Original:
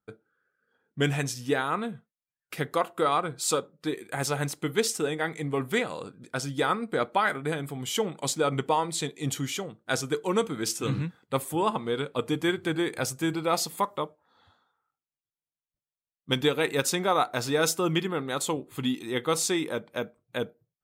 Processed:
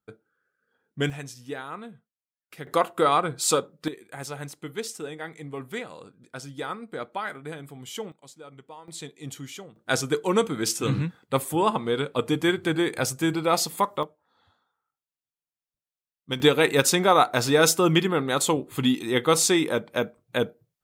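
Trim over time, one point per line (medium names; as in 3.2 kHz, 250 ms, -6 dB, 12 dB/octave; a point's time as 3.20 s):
-0.5 dB
from 1.10 s -8.5 dB
from 2.67 s +4 dB
from 3.88 s -7 dB
from 8.12 s -19.5 dB
from 8.88 s -7.5 dB
from 9.76 s +3.5 dB
from 14.03 s -3 dB
from 16.40 s +6 dB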